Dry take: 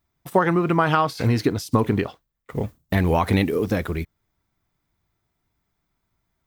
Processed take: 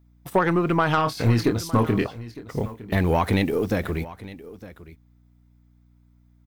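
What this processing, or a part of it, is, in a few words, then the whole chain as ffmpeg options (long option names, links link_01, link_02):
valve amplifier with mains hum: -filter_complex "[0:a]asettb=1/sr,asplit=3[link_01][link_02][link_03];[link_01]atrim=end=0.954[link_04];[link_02]atrim=start=0.95:end=2.07,asetpts=PTS-STARTPTS,afade=type=in:duration=0.004:curve=qsin,afade=type=out:start_time=1.116:duration=0.004:curve=qsin,asplit=2[link_05][link_06];[link_06]adelay=26,volume=-5.5dB[link_07];[link_05][link_07]amix=inputs=2:normalize=0,atrim=end_sample=49392[link_08];[link_03]atrim=start=2.066[link_09];[link_04][link_08]acrossfade=duration=0.004:curve1=hsin:curve2=qsin[link_10];[link_10][link_09]acrossfade=duration=0.004:curve1=qsin:curve2=hsin,aeval=exprs='(tanh(3.16*val(0)+0.25)-tanh(0.25))/3.16':channel_layout=same,aeval=exprs='val(0)+0.00178*(sin(2*PI*60*n/s)+sin(2*PI*2*60*n/s)/2+sin(2*PI*3*60*n/s)/3+sin(2*PI*4*60*n/s)/4+sin(2*PI*5*60*n/s)/5)':channel_layout=same,aecho=1:1:909:0.133"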